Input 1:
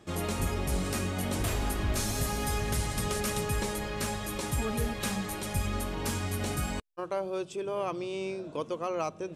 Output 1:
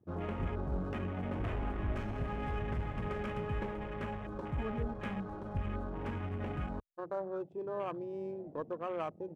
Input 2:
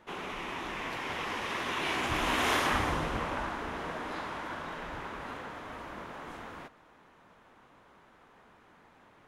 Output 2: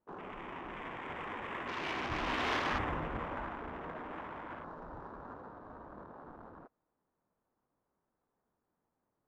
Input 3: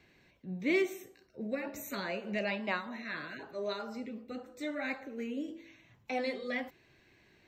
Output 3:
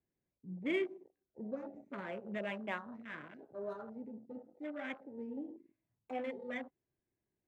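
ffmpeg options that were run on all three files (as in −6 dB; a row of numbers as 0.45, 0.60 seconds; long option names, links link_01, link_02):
-af "adynamicsmooth=sensitivity=7:basefreq=950,afwtdn=0.00794,volume=-5dB"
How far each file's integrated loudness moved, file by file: −6.5, −5.5, −6.0 LU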